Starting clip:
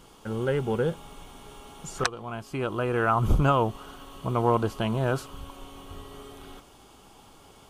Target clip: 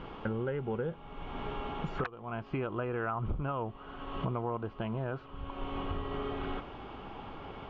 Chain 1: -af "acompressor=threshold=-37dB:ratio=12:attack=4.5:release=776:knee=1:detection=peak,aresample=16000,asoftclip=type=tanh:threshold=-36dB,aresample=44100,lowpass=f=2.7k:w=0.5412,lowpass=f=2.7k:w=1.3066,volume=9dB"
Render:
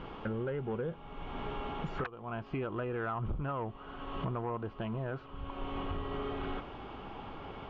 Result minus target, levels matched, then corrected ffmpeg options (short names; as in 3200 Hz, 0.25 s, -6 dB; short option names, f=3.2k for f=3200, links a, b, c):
soft clip: distortion +18 dB
-af "acompressor=threshold=-37dB:ratio=12:attack=4.5:release=776:knee=1:detection=peak,aresample=16000,asoftclip=type=tanh:threshold=-24.5dB,aresample=44100,lowpass=f=2.7k:w=0.5412,lowpass=f=2.7k:w=1.3066,volume=9dB"